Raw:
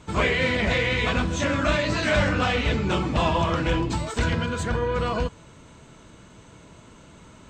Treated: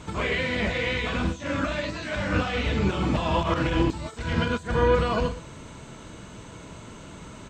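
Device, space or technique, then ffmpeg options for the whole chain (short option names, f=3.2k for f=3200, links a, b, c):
de-esser from a sidechain: -filter_complex "[0:a]aecho=1:1:45|117:0.299|0.112,asplit=2[a][b];[b]highpass=f=6.6k:w=0.5412,highpass=f=6.6k:w=1.3066,apad=whole_len=345041[c];[a][c]sidechaincompress=threshold=-58dB:ratio=8:attack=1.9:release=54,volume=6dB"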